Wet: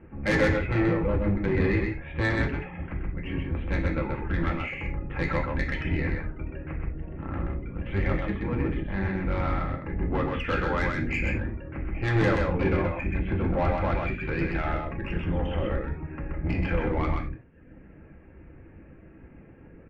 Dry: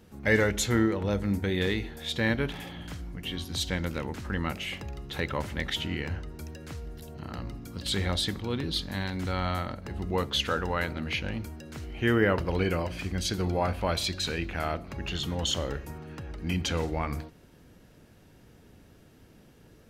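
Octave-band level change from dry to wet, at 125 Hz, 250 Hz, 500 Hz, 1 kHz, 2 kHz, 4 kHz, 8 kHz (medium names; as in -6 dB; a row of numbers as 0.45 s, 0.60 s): +4.0 dB, +2.5 dB, +2.0 dB, +2.0 dB, +2.0 dB, -12.5 dB, under -15 dB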